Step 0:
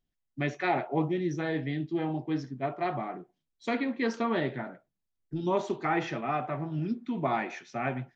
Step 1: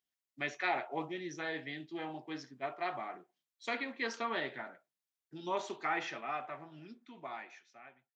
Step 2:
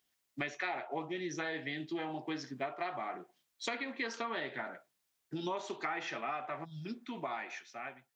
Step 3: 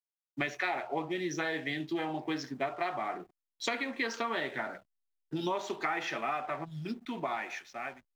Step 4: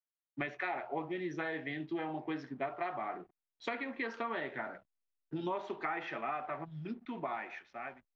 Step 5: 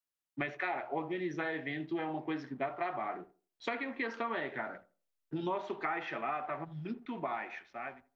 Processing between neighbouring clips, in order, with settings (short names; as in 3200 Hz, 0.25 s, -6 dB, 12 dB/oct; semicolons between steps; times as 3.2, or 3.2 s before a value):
ending faded out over 2.42 s; HPF 1300 Hz 6 dB/oct
spectral gain 6.65–6.86, 250–3200 Hz -23 dB; compressor 6:1, threshold -47 dBFS, peak gain reduction 17 dB; gain +11.5 dB
de-hum 64.79 Hz, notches 3; backlash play -57.5 dBFS; gain +4.5 dB
LPF 2400 Hz 12 dB/oct; gain -3.5 dB
tape echo 82 ms, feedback 28%, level -16 dB, low-pass 1100 Hz; gain +1.5 dB